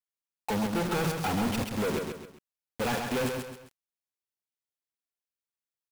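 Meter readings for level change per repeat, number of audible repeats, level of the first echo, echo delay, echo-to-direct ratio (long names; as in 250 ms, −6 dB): −8.5 dB, 3, −5.0 dB, 133 ms, −4.5 dB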